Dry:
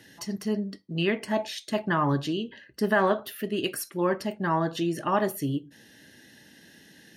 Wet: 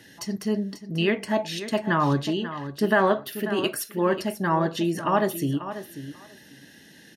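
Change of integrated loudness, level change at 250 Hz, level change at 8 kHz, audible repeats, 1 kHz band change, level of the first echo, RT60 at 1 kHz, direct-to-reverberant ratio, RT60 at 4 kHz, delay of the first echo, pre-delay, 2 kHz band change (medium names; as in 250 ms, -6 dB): +2.5 dB, +3.0 dB, +3.0 dB, 2, +2.5 dB, -12.0 dB, no reverb, no reverb, no reverb, 540 ms, no reverb, +3.0 dB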